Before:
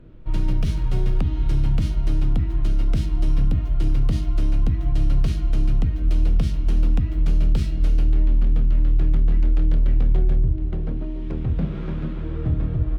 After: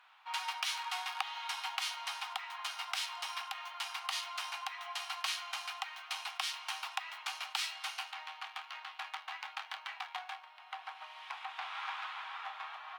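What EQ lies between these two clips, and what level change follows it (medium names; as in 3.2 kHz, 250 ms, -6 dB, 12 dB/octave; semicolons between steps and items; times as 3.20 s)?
rippled Chebyshev high-pass 750 Hz, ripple 3 dB; +7.5 dB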